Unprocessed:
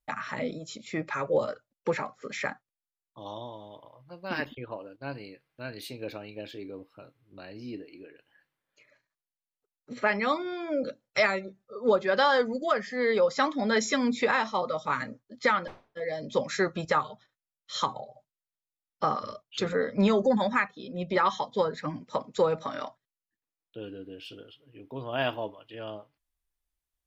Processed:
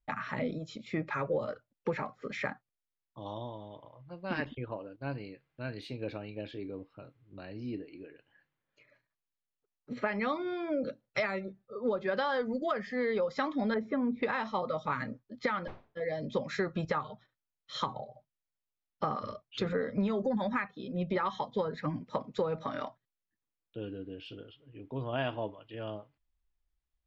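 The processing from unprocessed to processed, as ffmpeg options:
-filter_complex "[0:a]asettb=1/sr,asplit=3[a][b][c];[a]atrim=end=13.744[d];[b]atrim=start=13.74:end=14.23,asetpts=PTS-STARTPTS,afade=t=in:d=0.004:c=qsin,afade=t=out:st=0.486:d=0.004:c=qsin,lowpass=1.1k[e];[c]atrim=start=14.226[f];[d][e]acrossfade=d=0.004:c1=hsin:c2=qsin[g];[g][f]acrossfade=d=0.004:c1=qsin:c2=hsin,lowpass=3.9k,lowshelf=f=210:g=8.5,acompressor=threshold=-25dB:ratio=6,volume=-2.5dB"

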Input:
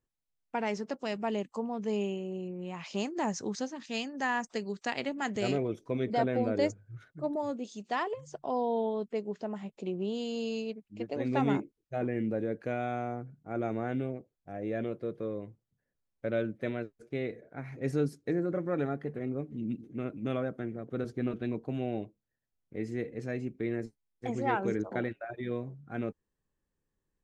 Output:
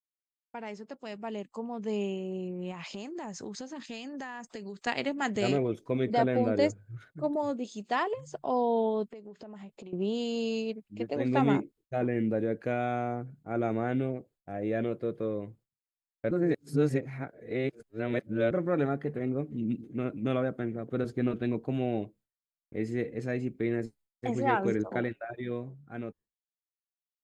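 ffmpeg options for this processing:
-filter_complex "[0:a]asettb=1/sr,asplit=3[a][b][c];[a]atrim=end=2.714[d];[b]atrim=start=2.71:end=4.87,asetpts=PTS-STARTPTS,afade=t=in:d=0.004:c=qsin,afade=t=out:st=2.156:d=0.004:c=qsin,acompressor=threshold=-39dB:ratio=10:attack=3.2:release=140:knee=1:detection=peak[e];[c]atrim=start=4.866[f];[d][e]acrossfade=d=0.004:c1=hsin:c2=qsin[g];[g][f]acrossfade=d=0.004:c1=qsin:c2=hsin,asettb=1/sr,asplit=3[h][i][j];[h]atrim=end=9.094[k];[i]atrim=start=9.09:end=9.93,asetpts=PTS-STARTPTS,afade=t=in:d=0.004:c=qsin,afade=t=out:st=0.836:d=0.004:c=qsin,acompressor=threshold=-45dB:ratio=10:attack=3.2:release=140:knee=1:detection=peak[l];[j]atrim=start=9.926[m];[k][l]acrossfade=d=0.004:c1=hsin:c2=qsin[n];[n][m]acrossfade=d=0.004:c1=qsin:c2=hsin,asplit=3[o][p][q];[o]atrim=end=16.312[r];[p]atrim=start=16.308:end=18.512,asetpts=PTS-STARTPTS,areverse[s];[q]atrim=start=18.508[t];[r][s]acrossfade=d=0.004:c1=hsin:c2=hsin[u];[u][t]acrossfade=d=0.004:c1=hsin:c2=hsin,bandreject=f=5.8k:w=9,dynaudnorm=f=180:g=21:m=12dB,agate=range=-33dB:threshold=-45dB:ratio=3:detection=peak,volume=-8.5dB"

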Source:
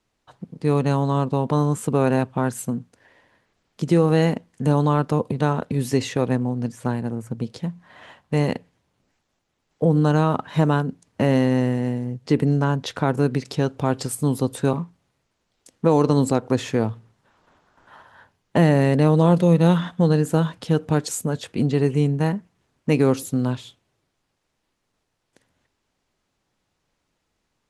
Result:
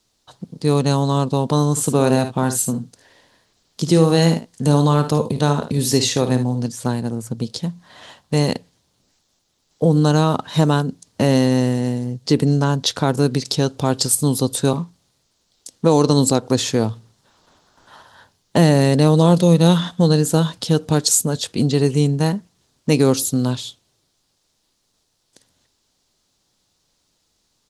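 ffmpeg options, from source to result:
-filter_complex "[0:a]asplit=3[a][b][c];[a]afade=t=out:st=1.76:d=0.02[d];[b]aecho=1:1:55|73:0.299|0.188,afade=t=in:st=1.76:d=0.02,afade=t=out:st=6.67:d=0.02[e];[c]afade=t=in:st=6.67:d=0.02[f];[d][e][f]amix=inputs=3:normalize=0,highshelf=f=3.1k:t=q:w=1.5:g=9,volume=3dB"

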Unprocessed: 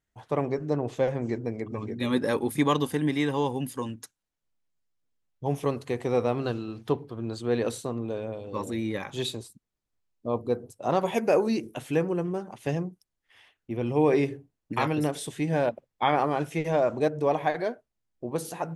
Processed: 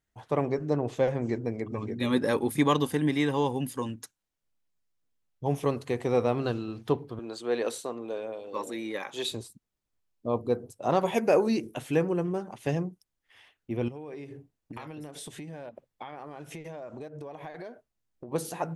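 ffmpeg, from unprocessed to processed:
-filter_complex "[0:a]asettb=1/sr,asplit=3[a][b][c];[a]atrim=end=7.194[d];[b]atrim=start=7.19:end=9.32,asetpts=PTS-STARTPTS,afade=t=in:d=0.004:c=qsin,afade=t=out:st=2.126:d=0.004:c=qsin,highpass=360[e];[c]atrim=start=9.316[f];[d][e]acrossfade=d=0.004:c1=hsin:c2=qsin[g];[g][f]acrossfade=d=0.004:c1=qsin:c2=hsin,asettb=1/sr,asplit=3[h][i][j];[h]atrim=end=13.884[k];[i]atrim=start=13.88:end=18.32,asetpts=PTS-STARTPTS,afade=t=in:d=0.004:c=qsin,afade=t=out:st=4.436:d=0.004:c=qsin,acompressor=threshold=-37dB:ratio=12:attack=3.2:release=140:knee=1:detection=peak[l];[j]atrim=start=18.316[m];[k][l]acrossfade=d=0.004:c1=hsin:c2=qsin[n];[n][m]acrossfade=d=0.004:c1=qsin:c2=hsin"

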